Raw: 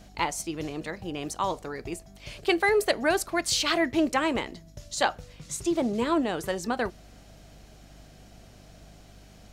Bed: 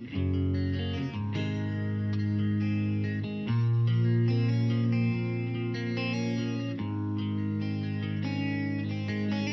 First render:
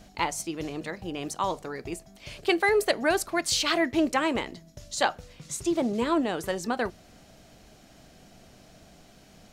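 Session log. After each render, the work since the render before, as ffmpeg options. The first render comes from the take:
-af "bandreject=f=50:t=h:w=4,bandreject=f=100:t=h:w=4,bandreject=f=150:t=h:w=4"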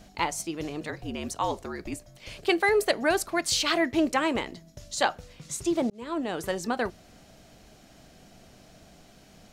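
-filter_complex "[0:a]asettb=1/sr,asplit=3[a][b][c];[a]atrim=end=0.894[d];[b]atrim=start=0.89:end=2.29,asetpts=PTS-STARTPTS,afade=t=in:d=0.004:c=qsin,afade=t=out:st=1.396:d=0.004:c=qsin,afreqshift=-63[e];[c]atrim=start=2.286[f];[d][e]acrossfade=d=0.004:c1=hsin:c2=qsin[g];[g][f]acrossfade=d=0.004:c1=qsin:c2=hsin,asplit=2[h][i];[h]atrim=end=5.9,asetpts=PTS-STARTPTS,afade=t=out:st=5.896:d=0.004:c=hsin[j];[i]atrim=start=5.9,asetpts=PTS-STARTPTS,afade=t=in:d=0.52[k];[j][k]concat=n=2:v=0:a=1"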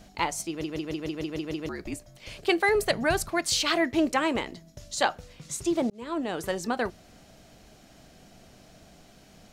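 -filter_complex "[0:a]asettb=1/sr,asplit=3[a][b][c];[a]atrim=end=2.754[d];[b]atrim=start=2.75:end=3.3,asetpts=PTS-STARTPTS,afade=t=in:d=0.004:c=qsin,afade=t=out:st=0.546:d=0.004:c=qsin,lowshelf=f=220:t=q:w=1.5:g=10.5[e];[c]atrim=start=3.296[f];[d][e]acrossfade=d=0.004:c1=hsin:c2=qsin[g];[g][f]acrossfade=d=0.004:c1=qsin:c2=hsin,asplit=9[h][i][j][k][l][m][n][o][p];[h]atrim=end=0.642[q];[i]atrim=start=0.488:end=0.642[r];[j]atrim=start=0.488:end=0.642[s];[k]atrim=start=0.488:end=0.642[t];[l]atrim=start=0.488:end=0.642[u];[m]atrim=start=0.488:end=0.642[v];[n]atrim=start=0.488:end=0.642[w];[o]atrim=start=0.488:end=0.642[x];[p]atrim=start=1.688[y];[q][r]acrossfade=d=0.004:c1=hsin:c2=hsin[z];[z][s]acrossfade=d=0.004:c1=hsin:c2=hsin[aa];[aa][t]acrossfade=d=0.004:c1=hsin:c2=hsin[ab];[ab][u]acrossfade=d=0.004:c1=hsin:c2=hsin[ac];[ac][v]acrossfade=d=0.004:c1=hsin:c2=hsin[ad];[ad][w]acrossfade=d=0.004:c1=hsin:c2=hsin[ae];[ae][x]acrossfade=d=0.004:c1=hsin:c2=hsin[af];[af][y]acrossfade=d=0.004:c1=hsin:c2=hsin"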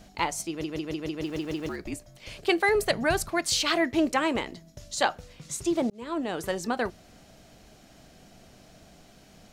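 -filter_complex "[0:a]asettb=1/sr,asplit=3[a][b][c];[a]atrim=end=1.224[d];[b]atrim=start=1.22:end=1.76,asetpts=PTS-STARTPTS,afade=t=in:d=0.004:c=qsin,afade=t=out:st=0.536:d=0.004:c=qsin,aeval=exprs='val(0)+0.5*0.00668*sgn(val(0))':c=same[e];[c]atrim=start=1.756[f];[d][e]acrossfade=d=0.004:c1=hsin:c2=qsin[g];[g][f]acrossfade=d=0.004:c1=qsin:c2=hsin"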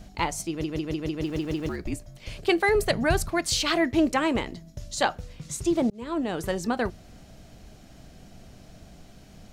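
-af "lowshelf=f=180:g=10.5"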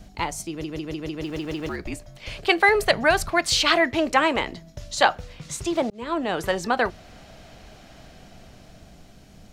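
-filter_complex "[0:a]acrossover=split=510|4700[a][b][c];[a]alimiter=level_in=1.5dB:limit=-24dB:level=0:latency=1,volume=-1.5dB[d];[b]dynaudnorm=f=250:g=13:m=9.5dB[e];[d][e][c]amix=inputs=3:normalize=0"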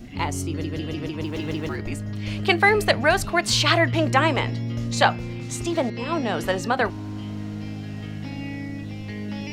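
-filter_complex "[1:a]volume=-1.5dB[a];[0:a][a]amix=inputs=2:normalize=0"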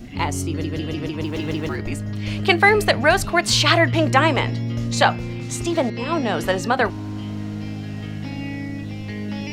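-af "volume=3dB,alimiter=limit=-1dB:level=0:latency=1"

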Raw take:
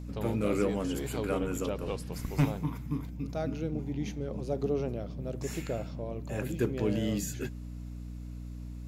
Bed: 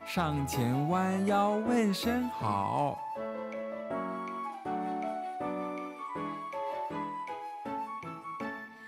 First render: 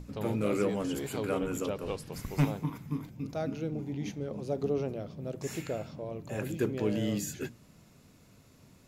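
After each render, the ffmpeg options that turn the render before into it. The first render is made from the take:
-af "bandreject=f=60:t=h:w=6,bandreject=f=120:t=h:w=6,bandreject=f=180:t=h:w=6,bandreject=f=240:t=h:w=6,bandreject=f=300:t=h:w=6"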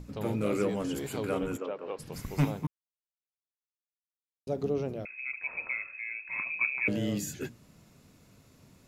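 -filter_complex "[0:a]asplit=3[a][b][c];[a]afade=t=out:st=1.56:d=0.02[d];[b]highpass=380,lowpass=2.1k,afade=t=in:st=1.56:d=0.02,afade=t=out:st=1.98:d=0.02[e];[c]afade=t=in:st=1.98:d=0.02[f];[d][e][f]amix=inputs=3:normalize=0,asettb=1/sr,asplit=3[g][h][i];[g]atrim=end=5.054[j];[h]atrim=start=5.05:end=6.88,asetpts=PTS-STARTPTS,afade=t=in:d=0.004:c=qsin,afade=t=out:st=1.826:d=0.004:c=qsin,lowpass=f=2.3k:t=q:w=0.5098,lowpass=f=2.3k:t=q:w=0.6013,lowpass=f=2.3k:t=q:w=0.9,lowpass=f=2.3k:t=q:w=2.563,afreqshift=-2700[k];[i]atrim=start=6.876[l];[j][k]acrossfade=d=0.004:c1=hsin:c2=qsin[m];[m][l]acrossfade=d=0.004:c1=qsin:c2=hsin,asplit=3[n][o][p];[n]atrim=end=2.67,asetpts=PTS-STARTPTS,afade=t=out:st=2.666:d=0.004:c=hsin[q];[o]atrim=start=2.67:end=4.47,asetpts=PTS-STARTPTS,volume=0[r];[p]atrim=start=4.47,asetpts=PTS-STARTPTS,afade=t=in:d=0.004:c=hsin[s];[q][r][s]concat=n=3:v=0:a=1"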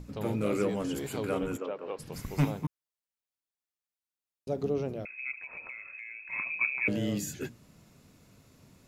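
-filter_complex "[0:a]asplit=3[a][b][c];[a]afade=t=out:st=5.32:d=0.02[d];[b]acompressor=threshold=-39dB:ratio=6:attack=3.2:release=140:knee=1:detection=peak,afade=t=in:st=5.32:d=0.02,afade=t=out:st=6.31:d=0.02[e];[c]afade=t=in:st=6.31:d=0.02[f];[d][e][f]amix=inputs=3:normalize=0"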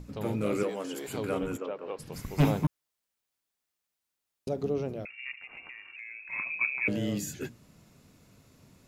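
-filter_complex "[0:a]asettb=1/sr,asplit=3[a][b][c];[a]atrim=end=0.634[d];[b]atrim=start=0.63:end=1.08,asetpts=PTS-STARTPTS,afade=t=in:d=0.004:c=qsin,afade=t=out:st=0.446:d=0.004:c=qsin,highpass=340[e];[c]atrim=start=1.076[f];[d][e]acrossfade=d=0.004:c1=hsin:c2=qsin[g];[g][f]acrossfade=d=0.004:c1=qsin:c2=hsin,asettb=1/sr,asplit=3[h][i][j];[h]atrim=end=2.404[k];[i]atrim=start=2.4:end=4.49,asetpts=PTS-STARTPTS,afade=t=in:d=0.004:c=qsin,afade=t=out:st=2.086:d=0.004:c=qsin,aeval=exprs='0.141*sin(PI/2*1.58*val(0)/0.141)':c=same[l];[j]atrim=start=4.486[m];[k][l]acrossfade=d=0.004:c1=hsin:c2=qsin[n];[n][m]acrossfade=d=0.004:c1=qsin:c2=hsin,asettb=1/sr,asplit=3[o][p][q];[o]atrim=end=5.104[r];[p]atrim=start=5.1:end=5.96,asetpts=PTS-STARTPTS,afade=t=in:d=0.004:c=qsin,afade=t=out:st=0.856:d=0.004:c=qsin,aeval=exprs='val(0)*sin(2*PI*220*n/s)':c=same[s];[q]atrim=start=5.956[t];[r][s]acrossfade=d=0.004:c1=hsin:c2=qsin[u];[u][t]acrossfade=d=0.004:c1=qsin:c2=hsin"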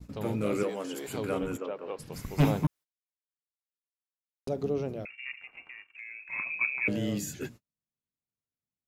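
-af "agate=range=-42dB:threshold=-46dB:ratio=16:detection=peak"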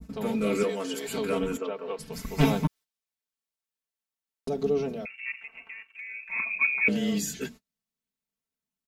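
-af "adynamicequalizer=threshold=0.00355:dfrequency=4000:dqfactor=0.72:tfrequency=4000:tqfactor=0.72:attack=5:release=100:ratio=0.375:range=2.5:mode=boostabove:tftype=bell,aecho=1:1:4.5:0.95"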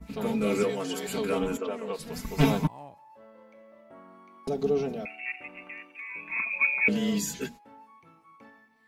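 -filter_complex "[1:a]volume=-15dB[a];[0:a][a]amix=inputs=2:normalize=0"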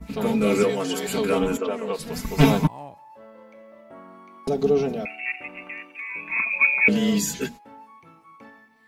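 -af "volume=6dB"

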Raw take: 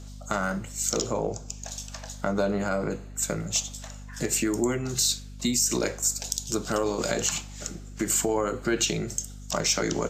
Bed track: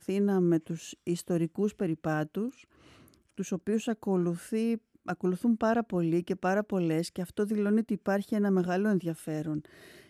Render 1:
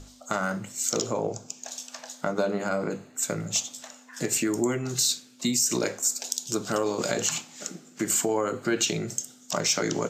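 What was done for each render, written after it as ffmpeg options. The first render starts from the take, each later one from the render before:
-af "bandreject=f=50:t=h:w=6,bandreject=f=100:t=h:w=6,bandreject=f=150:t=h:w=6,bandreject=f=200:t=h:w=6"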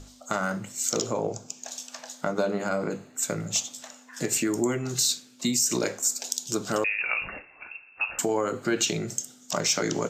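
-filter_complex "[0:a]asettb=1/sr,asplit=3[a][b][c];[a]atrim=end=6.844[d];[b]atrim=start=6.84:end=8.19,asetpts=PTS-STARTPTS,afade=t=in:d=0.004:c=qsin,afade=t=out:st=1.346:d=0.004:c=qsin,lowpass=f=2.5k:t=q:w=0.5098,lowpass=f=2.5k:t=q:w=0.6013,lowpass=f=2.5k:t=q:w=0.9,lowpass=f=2.5k:t=q:w=2.563,afreqshift=-2900[e];[c]atrim=start=8.186[f];[d][e]acrossfade=d=0.004:c1=hsin:c2=qsin[g];[g][f]acrossfade=d=0.004:c1=qsin:c2=hsin"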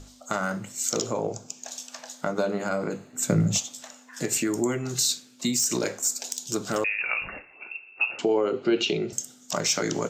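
-filter_complex "[0:a]asettb=1/sr,asplit=3[a][b][c];[a]atrim=end=3.134[d];[b]atrim=start=3.13:end=3.58,asetpts=PTS-STARTPTS,afade=t=in:d=0.004:c=qsin,afade=t=out:st=0.446:d=0.004:c=qsin,equalizer=f=140:w=0.47:g=13[e];[c]atrim=start=3.576[f];[d][e]acrossfade=d=0.004:c1=hsin:c2=qsin[g];[g][f]acrossfade=d=0.004:c1=qsin:c2=hsin,asettb=1/sr,asplit=3[h][i][j];[h]atrim=end=5.534[k];[i]atrim=start=5.53:end=6.99,asetpts=PTS-STARTPTS,afade=t=in:d=0.004:c=qsin,afade=t=out:st=1.456:d=0.004:c=qsin,asoftclip=type=hard:threshold=-17.5dB[l];[j]atrim=start=6.986[m];[k][l]acrossfade=d=0.004:c1=hsin:c2=qsin[n];[n][m]acrossfade=d=0.004:c1=qsin:c2=hsin,asettb=1/sr,asplit=3[o][p][q];[o]atrim=end=7.534[r];[p]atrim=start=7.53:end=9.13,asetpts=PTS-STARTPTS,afade=t=in:d=0.004:c=qsin,afade=t=out:st=1.596:d=0.004:c=qsin,highpass=150,equalizer=f=390:t=q:w=4:g=9,equalizer=f=1.1k:t=q:w=4:g=-4,equalizer=f=1.7k:t=q:w=4:g=-9,equalizer=f=2.8k:t=q:w=4:g=6,lowpass=f=4.6k:w=0.5412,lowpass=f=4.6k:w=1.3066[s];[q]atrim=start=9.126[t];[r][s]acrossfade=d=0.004:c1=hsin:c2=qsin[u];[u][t]acrossfade=d=0.004:c1=qsin:c2=hsin"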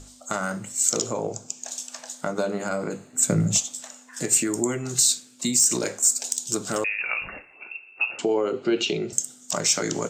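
-af "equalizer=f=8.4k:t=o:w=0.55:g=10"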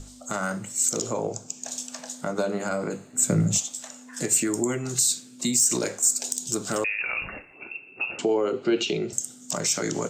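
-filter_complex "[0:a]acrossover=split=390|7600[a][b][c];[a]acompressor=mode=upward:threshold=-37dB:ratio=2.5[d];[b]alimiter=limit=-18.5dB:level=0:latency=1:release=65[e];[d][e][c]amix=inputs=3:normalize=0"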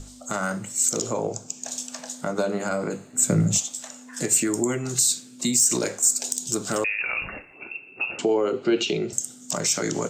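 -af "volume=1.5dB"

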